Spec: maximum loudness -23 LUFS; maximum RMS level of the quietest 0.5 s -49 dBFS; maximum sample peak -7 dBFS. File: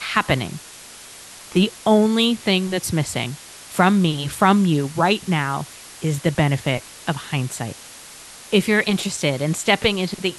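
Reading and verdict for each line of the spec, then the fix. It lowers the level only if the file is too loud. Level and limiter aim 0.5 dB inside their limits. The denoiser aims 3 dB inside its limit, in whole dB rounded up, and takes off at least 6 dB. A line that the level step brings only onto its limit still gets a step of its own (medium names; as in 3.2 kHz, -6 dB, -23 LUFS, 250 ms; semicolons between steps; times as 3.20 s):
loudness -20.0 LUFS: fail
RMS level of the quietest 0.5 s -41 dBFS: fail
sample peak -3.0 dBFS: fail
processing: noise reduction 8 dB, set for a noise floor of -41 dBFS; trim -3.5 dB; peak limiter -7.5 dBFS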